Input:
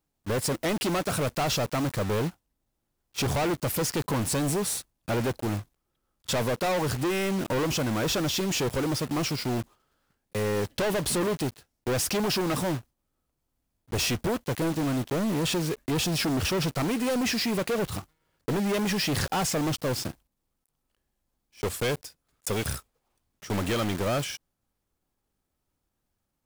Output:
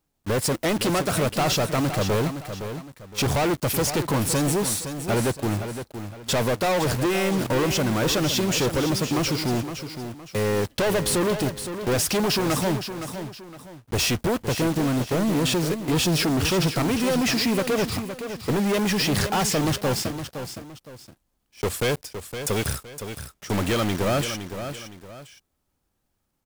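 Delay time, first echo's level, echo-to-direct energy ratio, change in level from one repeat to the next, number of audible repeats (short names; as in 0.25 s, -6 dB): 0.514 s, -9.5 dB, -9.0 dB, -9.5 dB, 2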